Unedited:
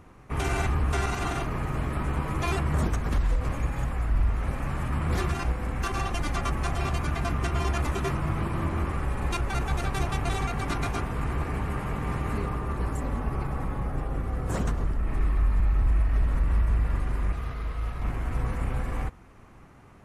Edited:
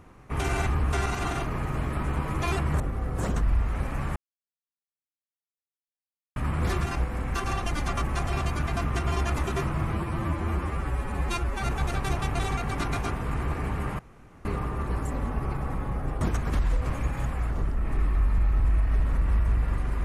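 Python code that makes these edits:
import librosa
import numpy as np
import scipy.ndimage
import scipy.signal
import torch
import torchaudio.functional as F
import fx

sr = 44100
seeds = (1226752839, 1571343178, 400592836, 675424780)

y = fx.edit(x, sr, fx.swap(start_s=2.8, length_s=1.3, other_s=14.11, other_length_s=0.62),
    fx.insert_silence(at_s=4.84, length_s=2.2),
    fx.stretch_span(start_s=8.4, length_s=1.16, factor=1.5),
    fx.room_tone_fill(start_s=11.89, length_s=0.46), tone=tone)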